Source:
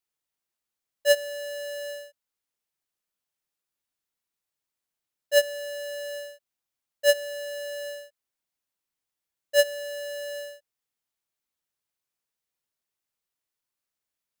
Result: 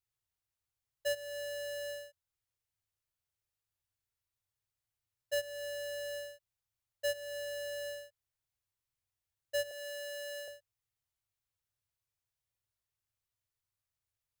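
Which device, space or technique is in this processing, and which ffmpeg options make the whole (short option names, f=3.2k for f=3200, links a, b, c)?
car stereo with a boomy subwoofer: -filter_complex "[0:a]lowshelf=f=150:t=q:w=3:g=11.5,alimiter=limit=-24dB:level=0:latency=1:release=270,asettb=1/sr,asplit=3[a][b][c];[a]atrim=end=9.714[d];[b]atrim=start=9.71:end=10.48,asetpts=PTS-STARTPTS,afade=t=in:d=0.004:c=qsin,afade=t=out:st=0.766:d=0.004:c=qsin,highpass=f=580:w=0.5412,highpass=f=580:w=1.3066[e];[c]atrim=start=10.476[f];[d][e]acrossfade=d=0.004:c1=hsin:c2=qsin[g];[g][f]acrossfade=d=0.004:c1=qsin:c2=hsin,volume=-5dB"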